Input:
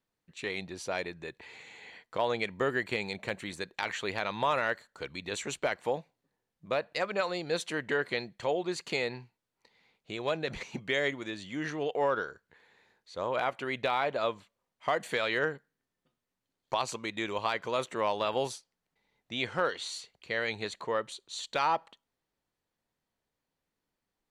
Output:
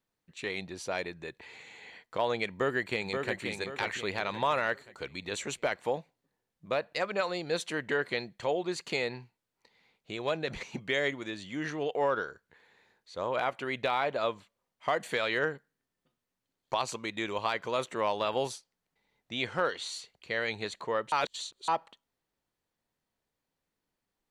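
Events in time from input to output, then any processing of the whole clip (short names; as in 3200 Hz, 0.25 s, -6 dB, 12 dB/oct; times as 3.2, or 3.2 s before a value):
2.48–3.44 echo throw 0.53 s, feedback 40%, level -5 dB
21.12–21.68 reverse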